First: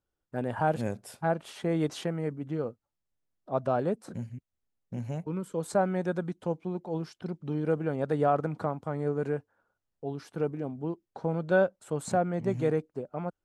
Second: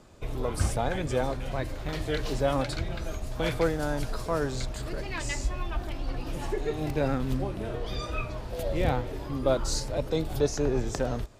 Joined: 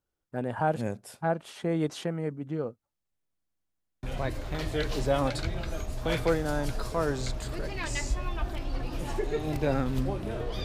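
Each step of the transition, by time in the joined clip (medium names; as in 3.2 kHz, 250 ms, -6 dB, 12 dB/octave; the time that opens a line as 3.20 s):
first
3.31 s: stutter in place 0.09 s, 8 plays
4.03 s: go over to second from 1.37 s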